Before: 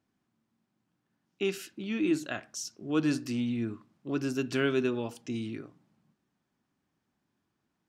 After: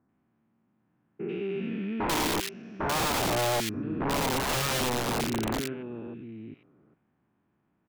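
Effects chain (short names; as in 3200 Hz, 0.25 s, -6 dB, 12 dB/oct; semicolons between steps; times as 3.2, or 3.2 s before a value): stepped spectrum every 0.4 s; LPF 2400 Hz 24 dB/oct; echo 0.934 s -12 dB; wrapped overs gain 30.5 dB; bands offset in time lows, highs 90 ms, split 1800 Hz; gain +8 dB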